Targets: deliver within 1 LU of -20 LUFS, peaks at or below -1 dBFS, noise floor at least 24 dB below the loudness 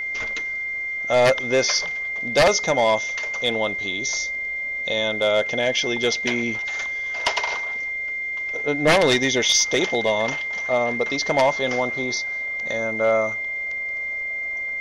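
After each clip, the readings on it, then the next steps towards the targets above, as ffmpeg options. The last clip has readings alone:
steady tone 2.1 kHz; tone level -25 dBFS; loudness -21.5 LUFS; peak level -9.0 dBFS; loudness target -20.0 LUFS
-> -af "bandreject=f=2100:w=30"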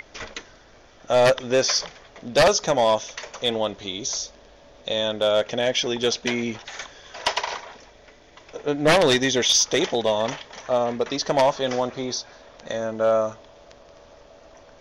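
steady tone not found; loudness -22.0 LUFS; peak level -9.5 dBFS; loudness target -20.0 LUFS
-> -af "volume=1.26"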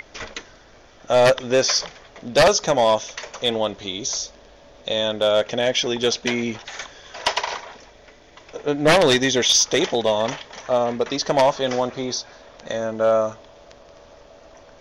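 loudness -20.0 LUFS; peak level -7.5 dBFS; noise floor -49 dBFS

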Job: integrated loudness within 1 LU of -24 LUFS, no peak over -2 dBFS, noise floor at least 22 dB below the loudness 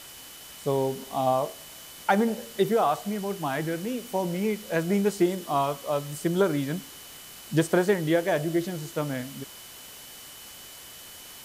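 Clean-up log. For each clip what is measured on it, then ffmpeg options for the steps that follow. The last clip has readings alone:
steady tone 3 kHz; tone level -51 dBFS; noise floor -45 dBFS; noise floor target -49 dBFS; loudness -27.0 LUFS; peak level -9.0 dBFS; loudness target -24.0 LUFS
-> -af "bandreject=f=3000:w=30"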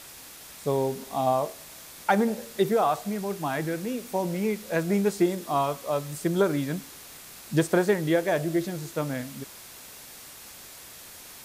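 steady tone not found; noise floor -46 dBFS; noise floor target -49 dBFS
-> -af "afftdn=nr=6:nf=-46"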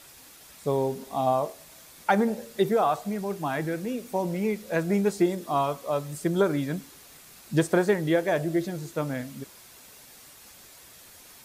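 noise floor -51 dBFS; loudness -27.0 LUFS; peak level -9.0 dBFS; loudness target -24.0 LUFS
-> -af "volume=1.41"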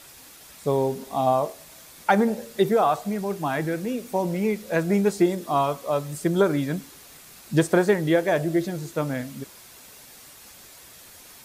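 loudness -24.0 LUFS; peak level -6.0 dBFS; noise floor -48 dBFS

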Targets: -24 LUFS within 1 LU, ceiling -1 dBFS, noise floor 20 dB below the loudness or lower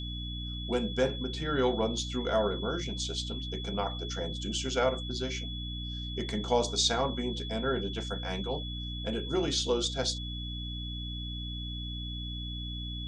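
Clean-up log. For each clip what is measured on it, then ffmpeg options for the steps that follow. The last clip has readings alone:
hum 60 Hz; highest harmonic 300 Hz; hum level -36 dBFS; steady tone 3.4 kHz; tone level -40 dBFS; loudness -32.5 LUFS; peak level -12.5 dBFS; loudness target -24.0 LUFS
-> -af "bandreject=f=60:t=h:w=6,bandreject=f=120:t=h:w=6,bandreject=f=180:t=h:w=6,bandreject=f=240:t=h:w=6,bandreject=f=300:t=h:w=6"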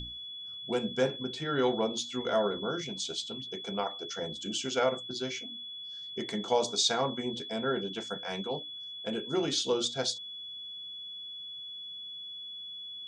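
hum not found; steady tone 3.4 kHz; tone level -40 dBFS
-> -af "bandreject=f=3400:w=30"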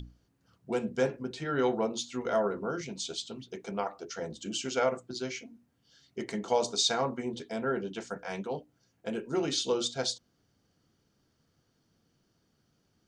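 steady tone not found; loudness -32.5 LUFS; peak level -13.5 dBFS; loudness target -24.0 LUFS
-> -af "volume=2.66"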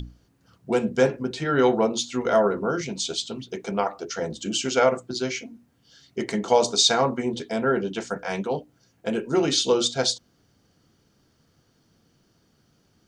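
loudness -24.0 LUFS; peak level -5.0 dBFS; noise floor -65 dBFS

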